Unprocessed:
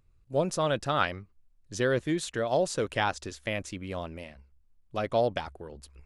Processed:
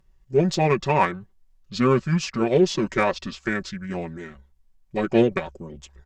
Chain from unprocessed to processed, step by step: comb 5.3 ms, depth 69%; Chebyshev shaper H 5 -28 dB, 7 -27 dB, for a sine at -10 dBFS; formant shift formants -6 st; trim +5.5 dB

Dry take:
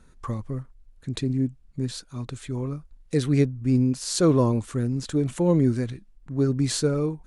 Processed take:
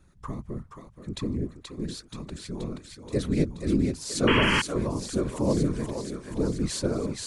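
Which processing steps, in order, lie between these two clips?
thinning echo 478 ms, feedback 69%, high-pass 500 Hz, level -4 dB; whisper effect; painted sound noise, 4.27–4.62 s, 840–3300 Hz -20 dBFS; trim -4.5 dB

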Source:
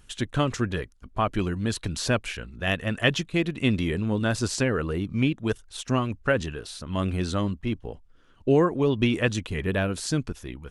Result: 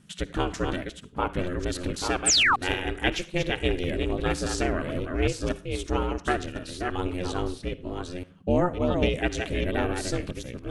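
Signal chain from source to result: chunks repeated in reverse 549 ms, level -5 dB; reverberation RT60 0.35 s, pre-delay 51 ms, DRR 15.5 dB; painted sound fall, 2.26–2.56 s, 890–9300 Hz -17 dBFS; ring modulator 180 Hz

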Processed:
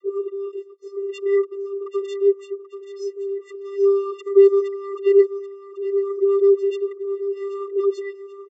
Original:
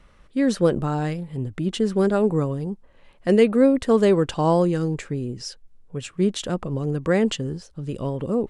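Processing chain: reverse the whole clip; comb 5.7 ms, depth 51%; vocoder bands 32, square 396 Hz; on a send: feedback delay 783 ms, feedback 42%, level -12 dB

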